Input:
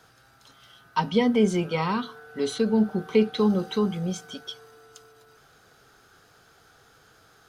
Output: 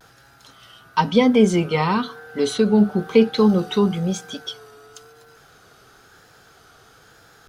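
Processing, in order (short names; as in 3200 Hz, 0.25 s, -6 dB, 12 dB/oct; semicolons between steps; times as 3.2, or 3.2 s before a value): vibrato 1 Hz 63 cents; gain +6 dB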